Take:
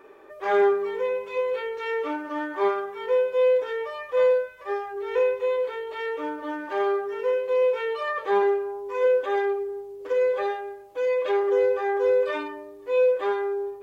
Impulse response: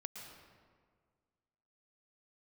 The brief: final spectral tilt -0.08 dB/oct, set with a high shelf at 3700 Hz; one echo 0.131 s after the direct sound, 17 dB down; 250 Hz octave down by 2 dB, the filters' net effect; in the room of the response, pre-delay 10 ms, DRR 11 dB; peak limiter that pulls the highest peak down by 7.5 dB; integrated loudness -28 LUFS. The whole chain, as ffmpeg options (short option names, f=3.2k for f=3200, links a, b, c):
-filter_complex "[0:a]equalizer=f=250:t=o:g=-4,highshelf=f=3.7k:g=5.5,alimiter=limit=-19.5dB:level=0:latency=1,aecho=1:1:131:0.141,asplit=2[a][b];[1:a]atrim=start_sample=2205,adelay=10[c];[b][c]afir=irnorm=-1:irlink=0,volume=-8dB[d];[a][d]amix=inputs=2:normalize=0,volume=-1.5dB"